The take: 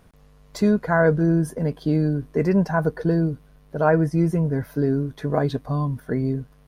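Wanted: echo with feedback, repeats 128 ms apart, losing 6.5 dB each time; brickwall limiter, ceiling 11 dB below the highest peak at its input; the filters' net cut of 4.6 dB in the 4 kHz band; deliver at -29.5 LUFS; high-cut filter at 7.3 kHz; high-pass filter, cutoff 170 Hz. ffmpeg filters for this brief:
-af "highpass=170,lowpass=7300,equalizer=f=4000:t=o:g=-5,alimiter=limit=0.158:level=0:latency=1,aecho=1:1:128|256|384|512|640|768:0.473|0.222|0.105|0.0491|0.0231|0.0109,volume=0.708"

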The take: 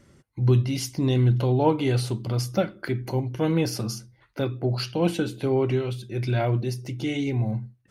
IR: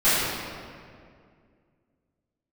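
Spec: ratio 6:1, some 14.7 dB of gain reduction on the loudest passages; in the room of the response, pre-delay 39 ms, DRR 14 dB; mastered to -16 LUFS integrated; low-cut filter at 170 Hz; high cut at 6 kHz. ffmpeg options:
-filter_complex "[0:a]highpass=170,lowpass=6000,acompressor=threshold=0.0251:ratio=6,asplit=2[s0][s1];[1:a]atrim=start_sample=2205,adelay=39[s2];[s1][s2]afir=irnorm=-1:irlink=0,volume=0.0211[s3];[s0][s3]amix=inputs=2:normalize=0,volume=10.6"

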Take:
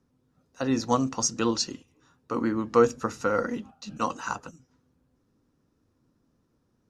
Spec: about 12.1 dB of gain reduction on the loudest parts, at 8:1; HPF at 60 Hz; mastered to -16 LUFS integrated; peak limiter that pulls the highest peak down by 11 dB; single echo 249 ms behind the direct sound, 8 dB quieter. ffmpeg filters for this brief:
-af "highpass=60,acompressor=threshold=0.0501:ratio=8,alimiter=level_in=1.12:limit=0.0631:level=0:latency=1,volume=0.891,aecho=1:1:249:0.398,volume=10.6"

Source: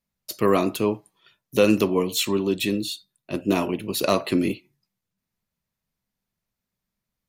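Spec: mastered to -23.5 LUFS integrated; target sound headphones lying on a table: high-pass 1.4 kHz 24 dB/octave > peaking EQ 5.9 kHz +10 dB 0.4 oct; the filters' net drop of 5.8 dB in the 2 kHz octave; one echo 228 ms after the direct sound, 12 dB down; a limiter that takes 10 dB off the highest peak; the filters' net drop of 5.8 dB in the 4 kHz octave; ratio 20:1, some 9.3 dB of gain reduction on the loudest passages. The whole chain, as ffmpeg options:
-af "equalizer=f=2000:t=o:g=-4.5,equalizer=f=4000:t=o:g=-8,acompressor=threshold=0.0794:ratio=20,alimiter=limit=0.0794:level=0:latency=1,highpass=f=1400:w=0.5412,highpass=f=1400:w=1.3066,equalizer=f=5900:t=o:w=0.4:g=10,aecho=1:1:228:0.251,volume=5.01"

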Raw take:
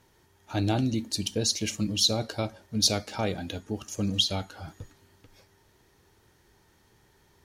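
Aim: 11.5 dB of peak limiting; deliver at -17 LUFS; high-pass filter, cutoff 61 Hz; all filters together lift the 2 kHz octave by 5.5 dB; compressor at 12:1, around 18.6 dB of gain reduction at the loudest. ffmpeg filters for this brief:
-af "highpass=61,equalizer=f=2000:t=o:g=7.5,acompressor=threshold=0.0158:ratio=12,volume=23.7,alimiter=limit=0.501:level=0:latency=1"

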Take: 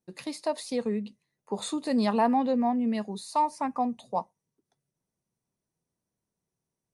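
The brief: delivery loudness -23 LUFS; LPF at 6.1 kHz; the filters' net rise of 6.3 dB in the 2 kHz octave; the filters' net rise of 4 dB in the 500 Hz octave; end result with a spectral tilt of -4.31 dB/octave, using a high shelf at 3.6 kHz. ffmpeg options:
-af "lowpass=6100,equalizer=f=500:t=o:g=4.5,equalizer=f=2000:t=o:g=8,highshelf=f=3600:g=-3,volume=1.5"

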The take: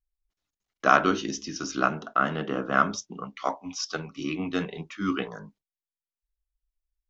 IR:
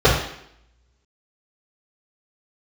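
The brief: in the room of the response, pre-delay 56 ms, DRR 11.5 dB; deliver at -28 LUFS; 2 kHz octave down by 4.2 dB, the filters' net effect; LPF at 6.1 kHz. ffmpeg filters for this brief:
-filter_complex "[0:a]lowpass=6100,equalizer=f=2000:t=o:g=-7,asplit=2[s0][s1];[1:a]atrim=start_sample=2205,adelay=56[s2];[s1][s2]afir=irnorm=-1:irlink=0,volume=0.015[s3];[s0][s3]amix=inputs=2:normalize=0,volume=1.12"

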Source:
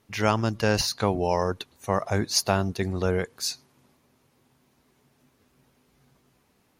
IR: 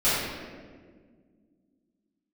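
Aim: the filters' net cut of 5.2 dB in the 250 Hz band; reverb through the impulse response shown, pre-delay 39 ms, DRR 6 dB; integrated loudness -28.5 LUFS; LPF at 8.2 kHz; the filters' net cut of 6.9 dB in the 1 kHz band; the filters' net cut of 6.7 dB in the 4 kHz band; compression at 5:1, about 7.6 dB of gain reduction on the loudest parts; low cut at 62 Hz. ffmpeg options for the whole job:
-filter_complex "[0:a]highpass=62,lowpass=8200,equalizer=f=250:t=o:g=-7,equalizer=f=1000:t=o:g=-8.5,equalizer=f=4000:t=o:g=-8,acompressor=threshold=0.0316:ratio=5,asplit=2[s0][s1];[1:a]atrim=start_sample=2205,adelay=39[s2];[s1][s2]afir=irnorm=-1:irlink=0,volume=0.0794[s3];[s0][s3]amix=inputs=2:normalize=0,volume=2.11"

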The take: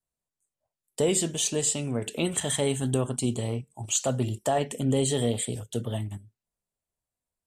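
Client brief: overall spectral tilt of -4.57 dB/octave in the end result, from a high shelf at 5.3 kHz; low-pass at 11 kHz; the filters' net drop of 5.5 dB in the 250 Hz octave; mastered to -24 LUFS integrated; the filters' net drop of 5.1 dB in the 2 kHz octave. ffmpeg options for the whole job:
-af "lowpass=11000,equalizer=f=250:t=o:g=-7,equalizer=f=2000:t=o:g=-5.5,highshelf=f=5300:g=-6,volume=2.24"

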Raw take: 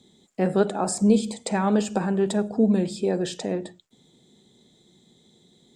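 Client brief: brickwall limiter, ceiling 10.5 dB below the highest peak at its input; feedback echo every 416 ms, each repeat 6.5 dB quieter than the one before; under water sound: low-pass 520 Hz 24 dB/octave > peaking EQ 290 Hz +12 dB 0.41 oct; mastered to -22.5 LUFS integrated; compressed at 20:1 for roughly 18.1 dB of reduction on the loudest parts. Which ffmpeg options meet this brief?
-af "acompressor=threshold=0.0251:ratio=20,alimiter=level_in=2.24:limit=0.0631:level=0:latency=1,volume=0.447,lowpass=f=520:w=0.5412,lowpass=f=520:w=1.3066,equalizer=f=290:t=o:w=0.41:g=12,aecho=1:1:416|832|1248|1664|2080|2496:0.473|0.222|0.105|0.0491|0.0231|0.0109,volume=7.08"

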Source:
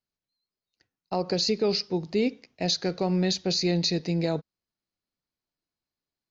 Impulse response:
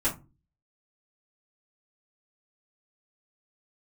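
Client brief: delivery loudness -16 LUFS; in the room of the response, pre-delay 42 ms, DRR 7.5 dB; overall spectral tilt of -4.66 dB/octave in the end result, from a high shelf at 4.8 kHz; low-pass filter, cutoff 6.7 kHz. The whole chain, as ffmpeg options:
-filter_complex "[0:a]lowpass=6700,highshelf=f=4800:g=5.5,asplit=2[s0][s1];[1:a]atrim=start_sample=2205,adelay=42[s2];[s1][s2]afir=irnorm=-1:irlink=0,volume=0.15[s3];[s0][s3]amix=inputs=2:normalize=0,volume=2.99"

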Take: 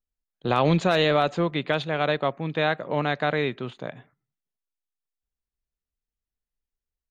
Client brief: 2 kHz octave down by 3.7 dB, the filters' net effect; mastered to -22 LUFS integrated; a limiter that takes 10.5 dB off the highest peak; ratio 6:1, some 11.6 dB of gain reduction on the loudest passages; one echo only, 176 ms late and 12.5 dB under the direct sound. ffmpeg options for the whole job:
-af "equalizer=f=2000:t=o:g=-5,acompressor=threshold=0.0355:ratio=6,alimiter=level_in=1.41:limit=0.0631:level=0:latency=1,volume=0.708,aecho=1:1:176:0.237,volume=7.08"

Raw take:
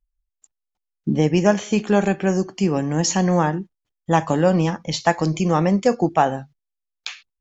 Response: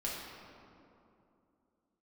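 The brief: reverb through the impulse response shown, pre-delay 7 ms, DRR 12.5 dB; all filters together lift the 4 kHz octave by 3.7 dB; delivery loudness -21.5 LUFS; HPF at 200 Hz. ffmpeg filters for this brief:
-filter_complex "[0:a]highpass=200,equalizer=f=4000:t=o:g=5,asplit=2[s0][s1];[1:a]atrim=start_sample=2205,adelay=7[s2];[s1][s2]afir=irnorm=-1:irlink=0,volume=0.168[s3];[s0][s3]amix=inputs=2:normalize=0,volume=0.944"

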